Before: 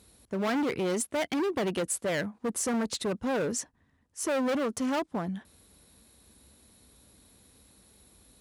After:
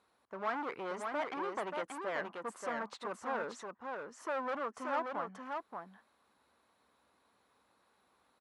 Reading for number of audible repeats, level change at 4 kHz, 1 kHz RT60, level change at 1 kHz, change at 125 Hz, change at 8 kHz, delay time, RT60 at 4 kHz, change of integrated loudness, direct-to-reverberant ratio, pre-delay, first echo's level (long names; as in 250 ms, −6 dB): 1, −13.5 dB, no reverb audible, −1.0 dB, −19.0 dB, −21.5 dB, 581 ms, no reverb audible, −9.0 dB, no reverb audible, no reverb audible, −4.5 dB